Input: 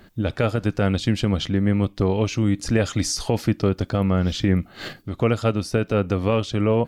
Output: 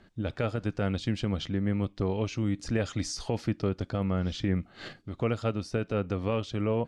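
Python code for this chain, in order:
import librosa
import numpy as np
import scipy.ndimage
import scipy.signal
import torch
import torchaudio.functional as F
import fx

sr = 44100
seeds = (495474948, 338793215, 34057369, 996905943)

y = scipy.signal.sosfilt(scipy.signal.bessel(8, 7100.0, 'lowpass', norm='mag', fs=sr, output='sos'), x)
y = y * 10.0 ** (-8.5 / 20.0)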